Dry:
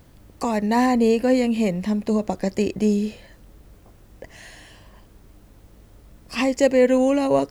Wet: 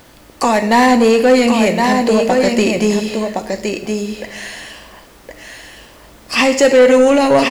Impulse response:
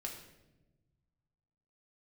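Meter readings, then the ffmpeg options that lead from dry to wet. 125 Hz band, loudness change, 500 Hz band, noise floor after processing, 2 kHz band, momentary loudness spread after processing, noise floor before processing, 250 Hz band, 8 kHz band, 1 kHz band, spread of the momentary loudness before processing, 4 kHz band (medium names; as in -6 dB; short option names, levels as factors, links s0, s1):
+4.5 dB, +7.5 dB, +9.0 dB, -43 dBFS, +13.5 dB, 14 LU, -51 dBFS, +6.0 dB, +13.0 dB, +11.5 dB, 8 LU, +14.0 dB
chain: -filter_complex "[0:a]aecho=1:1:1066:0.501,asplit=2[s0][s1];[1:a]atrim=start_sample=2205,highshelf=f=3600:g=9.5[s2];[s1][s2]afir=irnorm=-1:irlink=0,volume=0.794[s3];[s0][s3]amix=inputs=2:normalize=0,asplit=2[s4][s5];[s5]highpass=f=720:p=1,volume=7.08,asoftclip=type=tanh:threshold=0.891[s6];[s4][s6]amix=inputs=2:normalize=0,lowpass=f=4600:p=1,volume=0.501"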